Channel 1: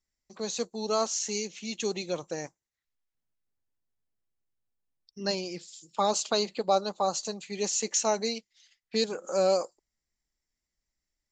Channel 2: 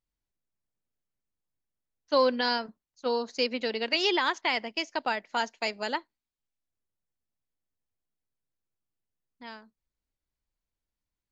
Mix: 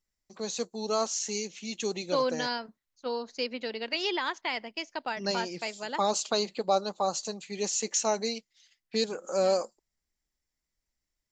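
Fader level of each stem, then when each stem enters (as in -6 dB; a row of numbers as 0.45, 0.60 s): -1.0, -4.5 dB; 0.00, 0.00 s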